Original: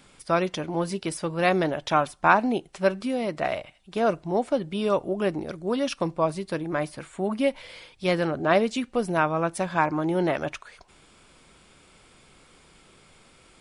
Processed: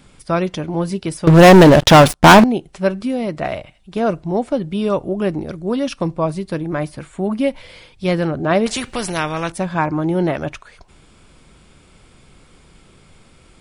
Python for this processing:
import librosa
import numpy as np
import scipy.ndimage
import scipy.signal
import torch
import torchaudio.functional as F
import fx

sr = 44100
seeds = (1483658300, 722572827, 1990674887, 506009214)

y = fx.low_shelf(x, sr, hz=240.0, db=10.5)
y = fx.leveller(y, sr, passes=5, at=(1.27, 2.44))
y = fx.spectral_comp(y, sr, ratio=2.0, at=(8.66, 9.52))
y = F.gain(torch.from_numpy(y), 2.5).numpy()